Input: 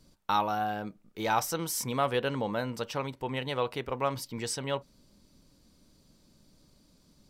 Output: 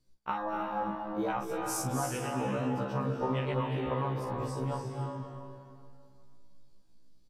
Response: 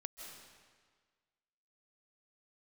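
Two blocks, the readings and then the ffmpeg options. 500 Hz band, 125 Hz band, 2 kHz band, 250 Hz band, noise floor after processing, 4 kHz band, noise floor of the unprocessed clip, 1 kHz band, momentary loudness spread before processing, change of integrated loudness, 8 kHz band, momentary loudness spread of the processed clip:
−2.0 dB, +4.5 dB, −5.0 dB, +2.0 dB, −58 dBFS, −9.5 dB, −64 dBFS, −3.0 dB, 7 LU, −2.0 dB, −3.5 dB, 6 LU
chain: -filter_complex "[0:a]lowshelf=frequency=80:gain=2.5,asplit=2[link_01][link_02];[link_02]adelay=44,volume=-6.5dB[link_03];[link_01][link_03]amix=inputs=2:normalize=0,acompressor=threshold=-31dB:ratio=10,afwtdn=0.01[link_04];[1:a]atrim=start_sample=2205,asetrate=28665,aresample=44100[link_05];[link_04][link_05]afir=irnorm=-1:irlink=0,afftfilt=real='re*1.73*eq(mod(b,3),0)':imag='im*1.73*eq(mod(b,3),0)':win_size=2048:overlap=0.75,volume=7dB"

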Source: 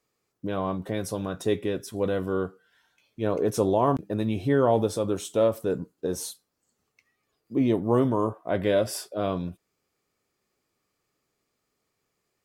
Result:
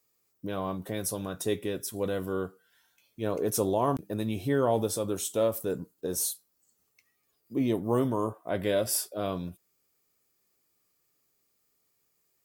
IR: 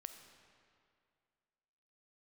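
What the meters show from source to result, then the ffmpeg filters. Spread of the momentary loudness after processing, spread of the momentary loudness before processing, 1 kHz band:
9 LU, 9 LU, −4.0 dB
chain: -af "aemphasis=mode=production:type=50fm,volume=-4dB"

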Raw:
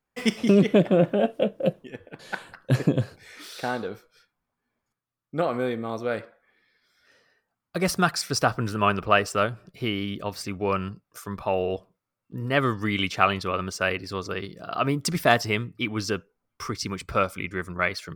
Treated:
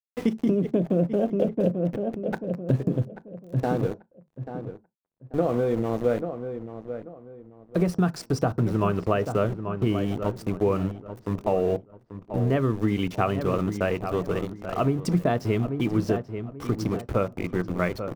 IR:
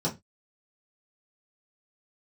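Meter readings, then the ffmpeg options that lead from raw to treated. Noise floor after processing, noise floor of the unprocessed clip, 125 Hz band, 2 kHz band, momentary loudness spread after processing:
−59 dBFS, −84 dBFS, +3.0 dB, −9.5 dB, 12 LU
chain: -filter_complex "[0:a]aeval=exprs='val(0)*gte(abs(val(0)),0.0251)':channel_layout=same,tiltshelf=frequency=920:gain=9,asplit=2[link_01][link_02];[link_02]adelay=837,lowpass=frequency=1800:poles=1,volume=-12dB,asplit=2[link_03][link_04];[link_04]adelay=837,lowpass=frequency=1800:poles=1,volume=0.28,asplit=2[link_05][link_06];[link_06]adelay=837,lowpass=frequency=1800:poles=1,volume=0.28[link_07];[link_01][link_03][link_05][link_07]amix=inputs=4:normalize=0,acompressor=threshold=-19dB:ratio=16,asplit=2[link_08][link_09];[1:a]atrim=start_sample=2205,atrim=end_sample=3969[link_10];[link_09][link_10]afir=irnorm=-1:irlink=0,volume=-23dB[link_11];[link_08][link_11]amix=inputs=2:normalize=0"

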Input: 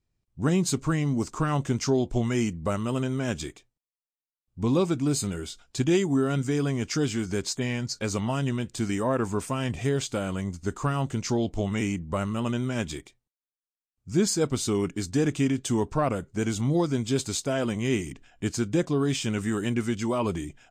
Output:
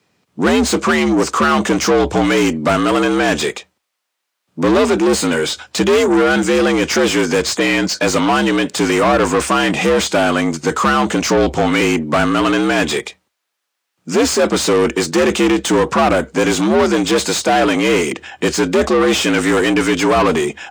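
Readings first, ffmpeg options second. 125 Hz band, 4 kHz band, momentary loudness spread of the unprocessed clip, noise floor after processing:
+2.5 dB, +16.0 dB, 5 LU, −75 dBFS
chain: -filter_complex "[0:a]asplit=2[link_01][link_02];[link_02]highpass=frequency=720:poles=1,volume=29dB,asoftclip=type=tanh:threshold=-11dB[link_03];[link_01][link_03]amix=inputs=2:normalize=0,lowpass=frequency=2800:poles=1,volume=-6dB,afreqshift=66,volume=5.5dB"

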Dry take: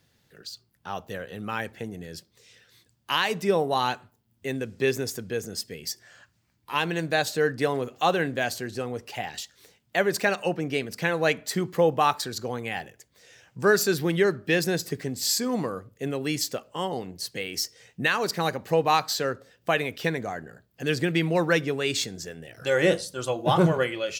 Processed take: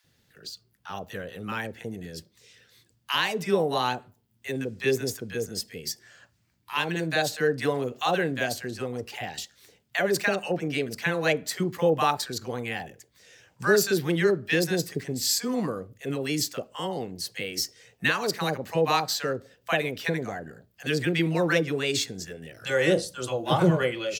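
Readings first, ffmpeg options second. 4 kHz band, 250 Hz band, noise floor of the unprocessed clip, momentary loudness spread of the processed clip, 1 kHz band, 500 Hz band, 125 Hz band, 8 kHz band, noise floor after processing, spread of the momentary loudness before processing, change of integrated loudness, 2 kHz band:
0.0 dB, 0.0 dB, −69 dBFS, 14 LU, −2.5 dB, −1.0 dB, 0.0 dB, 0.0 dB, −68 dBFS, 13 LU, −0.5 dB, −0.5 dB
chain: -filter_complex "[0:a]acrossover=split=840[link_01][link_02];[link_01]adelay=40[link_03];[link_03][link_02]amix=inputs=2:normalize=0"

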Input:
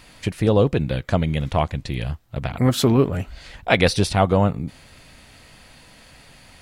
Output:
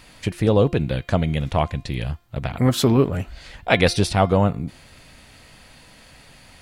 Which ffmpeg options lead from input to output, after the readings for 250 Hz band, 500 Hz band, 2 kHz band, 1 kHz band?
0.0 dB, 0.0 dB, 0.0 dB, 0.0 dB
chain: -af "bandreject=frequency=348.8:width_type=h:width=4,bandreject=frequency=697.6:width_type=h:width=4,bandreject=frequency=1046.4:width_type=h:width=4,bandreject=frequency=1395.2:width_type=h:width=4,bandreject=frequency=1744:width_type=h:width=4,bandreject=frequency=2092.8:width_type=h:width=4,bandreject=frequency=2441.6:width_type=h:width=4,bandreject=frequency=2790.4:width_type=h:width=4,bandreject=frequency=3139.2:width_type=h:width=4,bandreject=frequency=3488:width_type=h:width=4,bandreject=frequency=3836.8:width_type=h:width=4,bandreject=frequency=4185.6:width_type=h:width=4,bandreject=frequency=4534.4:width_type=h:width=4,bandreject=frequency=4883.2:width_type=h:width=4,bandreject=frequency=5232:width_type=h:width=4"

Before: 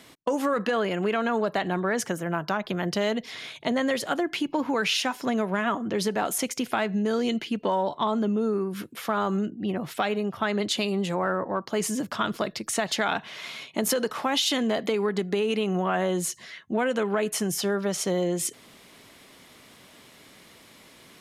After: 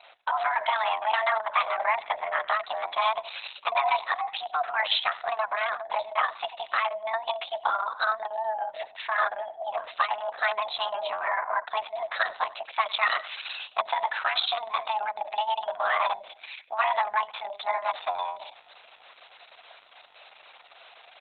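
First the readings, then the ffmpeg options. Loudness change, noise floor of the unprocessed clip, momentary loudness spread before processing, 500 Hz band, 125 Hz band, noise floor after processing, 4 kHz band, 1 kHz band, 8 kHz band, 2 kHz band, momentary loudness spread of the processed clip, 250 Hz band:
−1.0 dB, −53 dBFS, 4 LU, −6.0 dB, below −35 dB, −54 dBFS, −1.0 dB, +4.5 dB, below −40 dB, +3.0 dB, 8 LU, below −35 dB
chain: -filter_complex "[0:a]acrossover=split=210|1800[link_01][link_02][link_03];[link_01]alimiter=level_in=11dB:limit=-24dB:level=0:latency=1:release=23,volume=-11dB[link_04];[link_04][link_02][link_03]amix=inputs=3:normalize=0,afreqshift=440,aecho=1:1:93|186:0.133|0.036" -ar 48000 -c:a libopus -b:a 6k

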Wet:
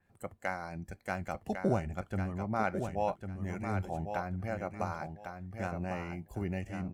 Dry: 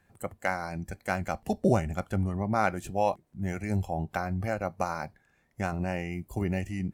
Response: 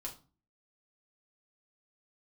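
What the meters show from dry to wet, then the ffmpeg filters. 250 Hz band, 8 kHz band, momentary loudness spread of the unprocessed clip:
−5.5 dB, −9.5 dB, 8 LU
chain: -af "highshelf=frequency=6200:gain=-4.5,aecho=1:1:1101|2202|3303:0.447|0.0938|0.0197,adynamicequalizer=threshold=0.00316:dfrequency=4100:dqfactor=0.7:tfrequency=4100:tqfactor=0.7:attack=5:release=100:ratio=0.375:range=1.5:mode=cutabove:tftype=highshelf,volume=-6dB"

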